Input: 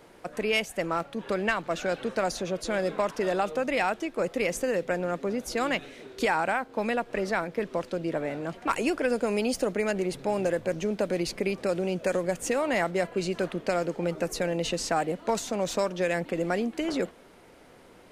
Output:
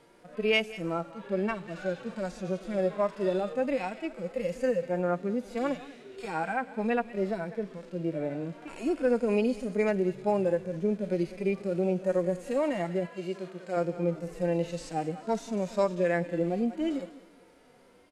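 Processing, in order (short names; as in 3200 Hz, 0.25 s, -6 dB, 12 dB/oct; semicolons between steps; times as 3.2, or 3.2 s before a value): LPF 12000 Hz 24 dB/oct; feedback echo 0.197 s, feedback 34%, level -17.5 dB; harmonic-percussive split percussive -15 dB; 13.08–13.77 HPF 440 Hz 6 dB/oct; harmonic-percussive split percussive -18 dB; gain +2 dB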